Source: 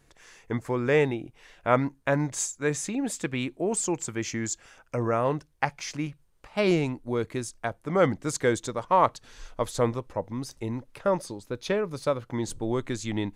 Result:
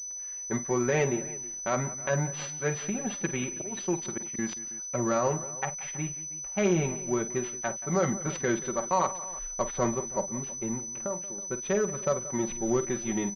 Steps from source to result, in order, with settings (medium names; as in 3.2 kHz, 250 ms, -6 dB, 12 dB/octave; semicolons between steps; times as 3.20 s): companding laws mixed up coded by A; comb 5.3 ms, depth 90%; 10.90–11.38 s: compression 3:1, threshold -34 dBFS, peak gain reduction 14 dB; Chebyshev shaper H 7 -30 dB, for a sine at -4.5 dBFS; peak limiter -16 dBFS, peak gain reduction 11 dB; 3.29–4.39 s: slow attack 335 ms; on a send: multi-tap echo 44/49/179/323 ms -19.5/-12.5/-17/-19 dB; on the sum: class-D stage that switches slowly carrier 6 kHz